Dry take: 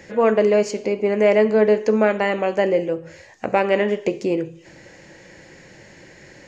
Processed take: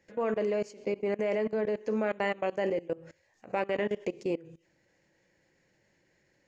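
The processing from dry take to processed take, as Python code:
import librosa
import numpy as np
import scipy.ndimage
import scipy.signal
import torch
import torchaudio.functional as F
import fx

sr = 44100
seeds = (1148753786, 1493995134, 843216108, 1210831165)

y = fx.level_steps(x, sr, step_db=21)
y = y * librosa.db_to_amplitude(-7.5)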